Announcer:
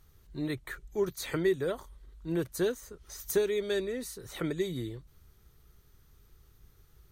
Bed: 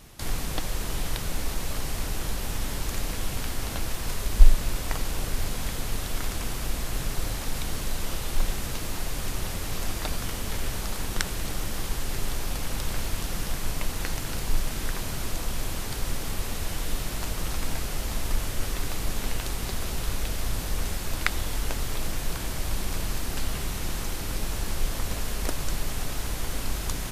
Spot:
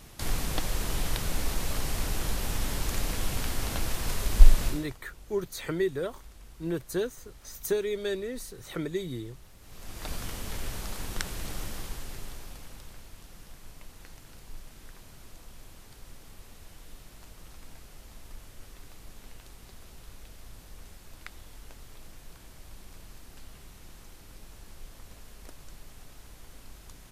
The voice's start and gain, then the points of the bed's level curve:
4.35 s, -0.5 dB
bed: 4.67 s -0.5 dB
4.98 s -23.5 dB
9.56 s -23.5 dB
10.11 s -5.5 dB
11.63 s -5.5 dB
13.04 s -19 dB

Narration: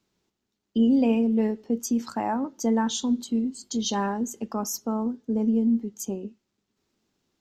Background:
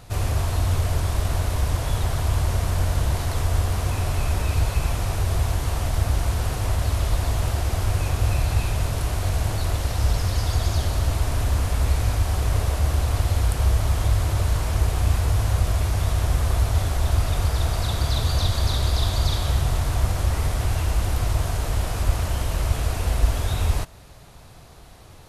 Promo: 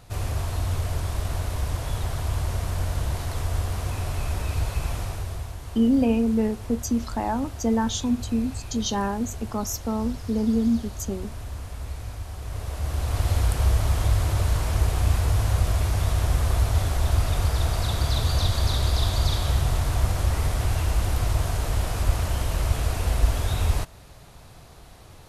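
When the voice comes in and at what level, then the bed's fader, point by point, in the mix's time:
5.00 s, +0.5 dB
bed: 4.99 s -4.5 dB
5.54 s -13 dB
12.38 s -13 dB
13.29 s -1 dB

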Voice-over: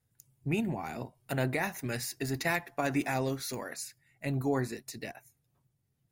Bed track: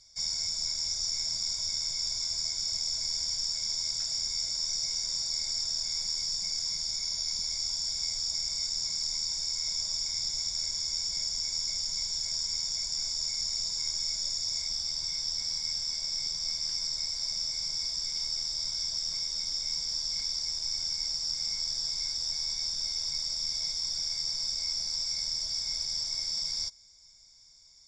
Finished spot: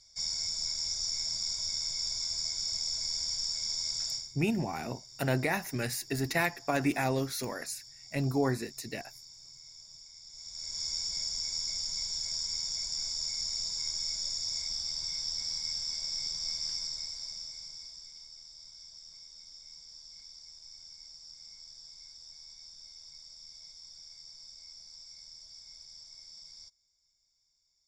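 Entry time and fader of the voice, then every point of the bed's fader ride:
3.90 s, +1.5 dB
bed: 4.13 s -2 dB
4.35 s -19.5 dB
10.24 s -19.5 dB
10.83 s -2.5 dB
16.69 s -2.5 dB
18.3 s -18 dB

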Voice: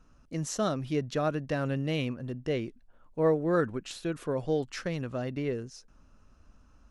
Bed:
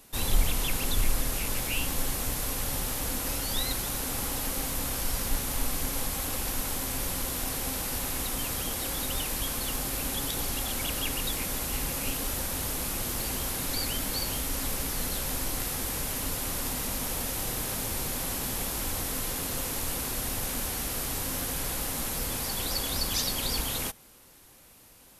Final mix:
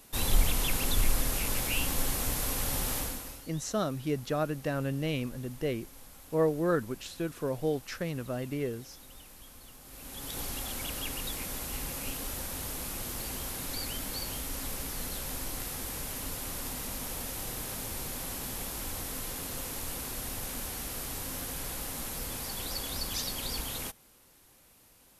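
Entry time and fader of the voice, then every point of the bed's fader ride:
3.15 s, -1.5 dB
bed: 2.98 s -0.5 dB
3.51 s -20.5 dB
9.8 s -20.5 dB
10.38 s -5.5 dB

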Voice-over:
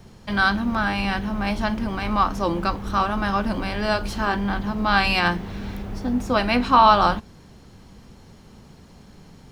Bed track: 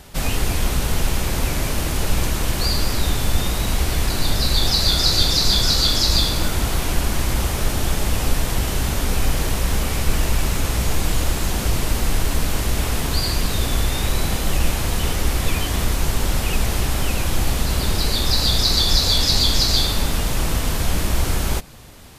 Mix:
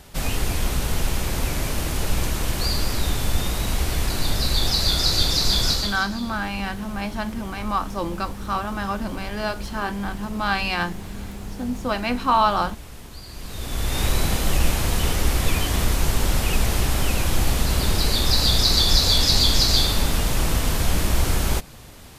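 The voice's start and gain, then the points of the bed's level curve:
5.55 s, -4.0 dB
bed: 5.71 s -3 dB
6.11 s -19 dB
13.26 s -19 dB
14.01 s -0.5 dB

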